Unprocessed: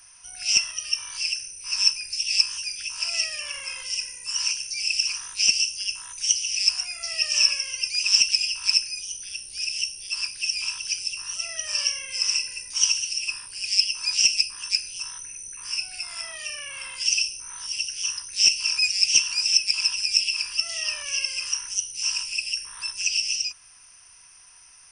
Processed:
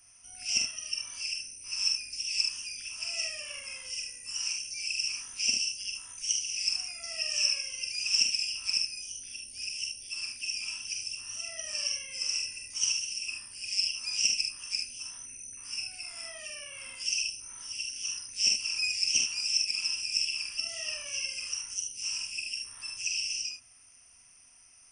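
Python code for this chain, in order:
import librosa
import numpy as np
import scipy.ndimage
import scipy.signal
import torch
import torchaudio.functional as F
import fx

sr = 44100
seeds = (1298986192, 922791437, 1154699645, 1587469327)

y = fx.graphic_eq_31(x, sr, hz=(100, 250, 630, 1000, 1600, 4000), db=(7, 11, 5, -8, -7, -11))
y = fx.room_early_taps(y, sr, ms=(45, 74), db=(-4.5, -6.0))
y = y * librosa.db_to_amplitude(-8.0)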